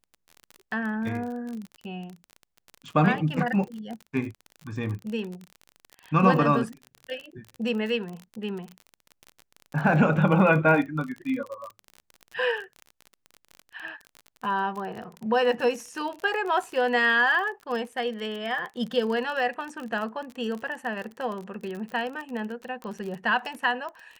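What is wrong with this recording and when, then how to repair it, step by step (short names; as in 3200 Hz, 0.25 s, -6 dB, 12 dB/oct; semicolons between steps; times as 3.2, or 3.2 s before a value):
crackle 34/s -32 dBFS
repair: de-click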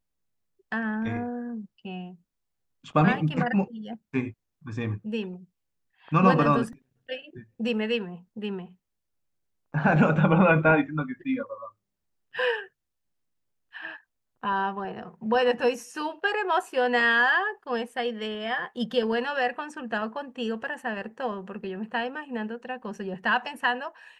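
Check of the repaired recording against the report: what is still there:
none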